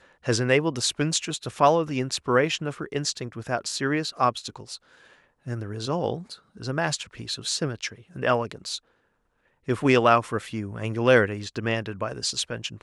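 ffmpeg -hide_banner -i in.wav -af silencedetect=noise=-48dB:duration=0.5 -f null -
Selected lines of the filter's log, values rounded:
silence_start: 8.79
silence_end: 9.68 | silence_duration: 0.89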